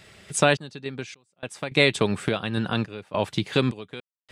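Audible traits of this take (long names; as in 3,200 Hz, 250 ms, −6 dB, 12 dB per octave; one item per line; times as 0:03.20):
sample-and-hold tremolo 3.5 Hz, depth 100%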